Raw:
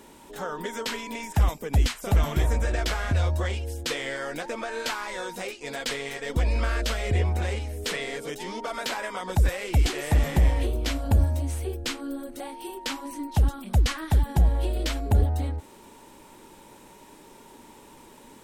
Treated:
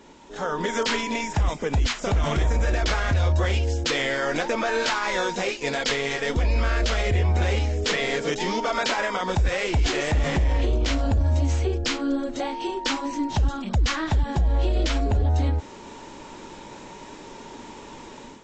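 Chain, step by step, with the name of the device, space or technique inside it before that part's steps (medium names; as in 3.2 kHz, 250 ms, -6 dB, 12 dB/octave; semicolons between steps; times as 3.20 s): low-bitrate web radio (level rider gain up to 9 dB; peak limiter -14.5 dBFS, peak gain reduction 11.5 dB; AAC 32 kbps 16 kHz)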